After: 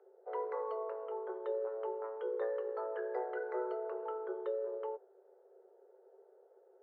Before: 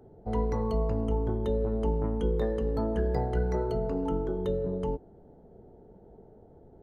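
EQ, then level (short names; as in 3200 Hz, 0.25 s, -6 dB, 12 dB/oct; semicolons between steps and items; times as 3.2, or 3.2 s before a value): rippled Chebyshev high-pass 370 Hz, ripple 9 dB; air absorption 470 m; dynamic EQ 990 Hz, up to +4 dB, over -52 dBFS, Q 0.99; +1.0 dB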